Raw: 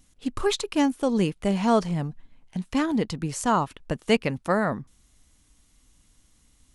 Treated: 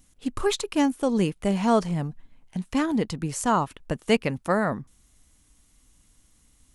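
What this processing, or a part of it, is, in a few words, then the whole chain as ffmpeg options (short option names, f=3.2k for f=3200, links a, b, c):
exciter from parts: -filter_complex "[0:a]asplit=2[a][b];[b]highpass=f=3.7k:p=1,asoftclip=type=tanh:threshold=-22dB,highpass=4.8k,volume=-6.5dB[c];[a][c]amix=inputs=2:normalize=0"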